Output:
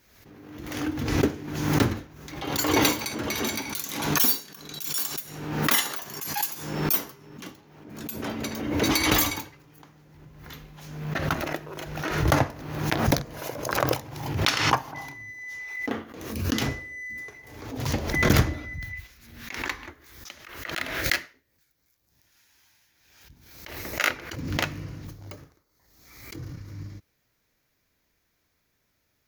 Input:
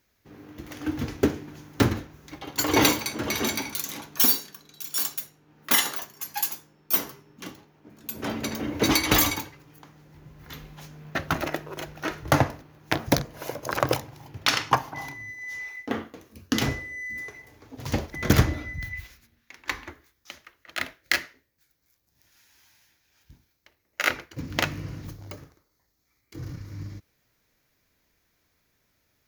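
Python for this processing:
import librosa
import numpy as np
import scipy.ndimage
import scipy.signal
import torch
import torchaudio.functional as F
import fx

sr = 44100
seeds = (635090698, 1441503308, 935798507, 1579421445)

y = fx.pre_swell(x, sr, db_per_s=51.0)
y = y * librosa.db_to_amplitude(-2.0)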